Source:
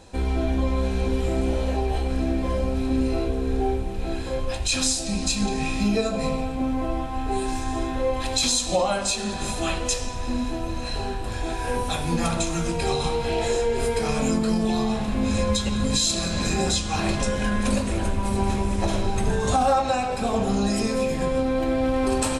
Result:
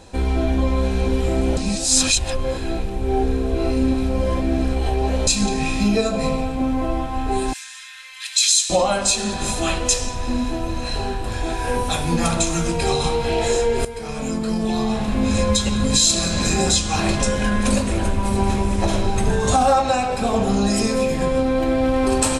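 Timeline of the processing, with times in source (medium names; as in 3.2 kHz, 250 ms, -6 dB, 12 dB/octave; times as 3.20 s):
1.57–5.27 s: reverse
7.53–8.70 s: inverse Chebyshev high-pass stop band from 670 Hz, stop band 50 dB
13.85–15.10 s: fade in, from -13.5 dB
whole clip: dynamic bell 7.5 kHz, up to +4 dB, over -37 dBFS, Q 0.96; trim +4 dB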